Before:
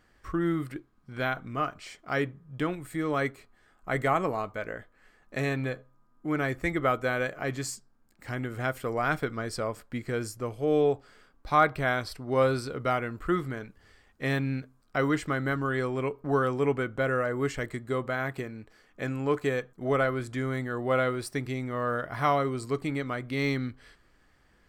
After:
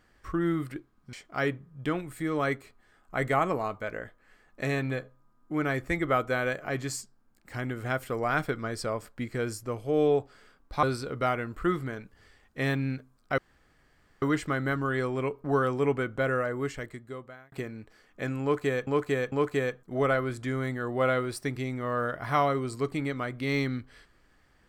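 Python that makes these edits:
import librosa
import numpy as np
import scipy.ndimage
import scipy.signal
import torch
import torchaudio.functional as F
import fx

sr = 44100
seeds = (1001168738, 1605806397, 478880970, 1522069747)

y = fx.edit(x, sr, fx.cut(start_s=1.13, length_s=0.74),
    fx.cut(start_s=11.57, length_s=0.9),
    fx.insert_room_tone(at_s=15.02, length_s=0.84),
    fx.fade_out_span(start_s=17.1, length_s=1.22),
    fx.repeat(start_s=19.22, length_s=0.45, count=3), tone=tone)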